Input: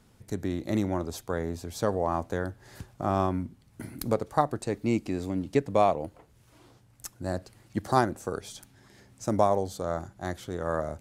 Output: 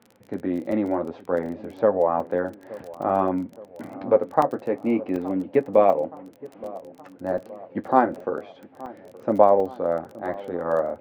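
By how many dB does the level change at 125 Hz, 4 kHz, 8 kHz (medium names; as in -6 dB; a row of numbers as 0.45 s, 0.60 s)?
-5.5 dB, no reading, under -10 dB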